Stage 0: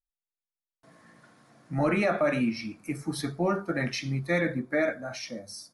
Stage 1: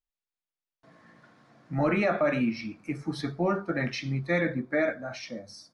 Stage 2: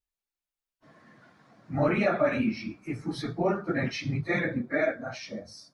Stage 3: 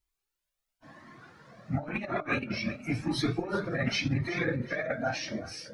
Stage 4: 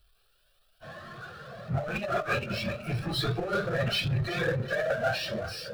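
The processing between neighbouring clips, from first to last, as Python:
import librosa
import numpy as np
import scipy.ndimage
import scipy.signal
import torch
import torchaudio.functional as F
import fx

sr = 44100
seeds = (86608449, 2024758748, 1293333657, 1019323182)

y1 = scipy.signal.sosfilt(scipy.signal.butter(2, 4800.0, 'lowpass', fs=sr, output='sos'), x)
y2 = fx.phase_scramble(y1, sr, seeds[0], window_ms=50)
y3 = fx.over_compress(y2, sr, threshold_db=-30.0, ratio=-0.5)
y3 = fx.echo_feedback(y3, sr, ms=377, feedback_pct=43, wet_db=-14.5)
y3 = fx.comb_cascade(y3, sr, direction='rising', hz=0.94)
y3 = F.gain(torch.from_numpy(y3), 6.0).numpy()
y4 = scipy.signal.medfilt(y3, 3)
y4 = fx.fixed_phaser(y4, sr, hz=1400.0, stages=8)
y4 = fx.power_curve(y4, sr, exponent=0.7)
y4 = F.gain(torch.from_numpy(y4), 2.0).numpy()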